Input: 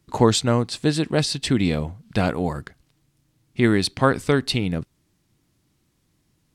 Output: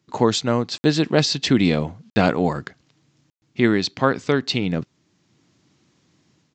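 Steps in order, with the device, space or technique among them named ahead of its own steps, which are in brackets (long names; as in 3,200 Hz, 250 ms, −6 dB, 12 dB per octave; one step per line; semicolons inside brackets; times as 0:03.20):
call with lost packets (high-pass filter 140 Hz 12 dB per octave; downsampling to 16,000 Hz; automatic gain control gain up to 9 dB; dropped packets of 60 ms)
level −1 dB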